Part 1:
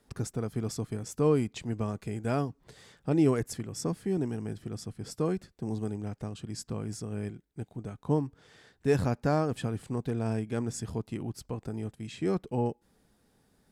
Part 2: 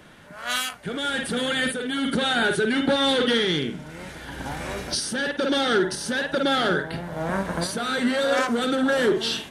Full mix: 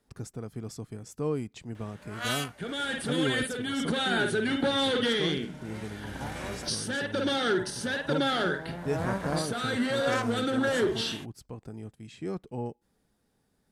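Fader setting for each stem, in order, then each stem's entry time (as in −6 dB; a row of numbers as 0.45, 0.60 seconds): −5.5, −5.5 decibels; 0.00, 1.75 seconds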